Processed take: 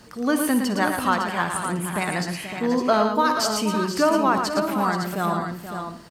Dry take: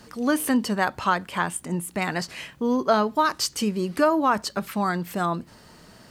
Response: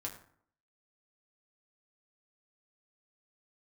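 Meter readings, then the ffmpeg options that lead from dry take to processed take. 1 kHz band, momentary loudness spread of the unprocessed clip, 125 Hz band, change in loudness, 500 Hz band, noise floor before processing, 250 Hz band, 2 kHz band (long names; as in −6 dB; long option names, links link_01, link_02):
+2.0 dB, 8 LU, +2.0 dB, +2.0 dB, +2.0 dB, −51 dBFS, +2.0 dB, +2.0 dB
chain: -filter_complex "[0:a]aecho=1:1:113|479|559:0.501|0.282|0.398,asplit=2[link_01][link_02];[1:a]atrim=start_sample=2205,adelay=57[link_03];[link_02][link_03]afir=irnorm=-1:irlink=0,volume=-10.5dB[link_04];[link_01][link_04]amix=inputs=2:normalize=0"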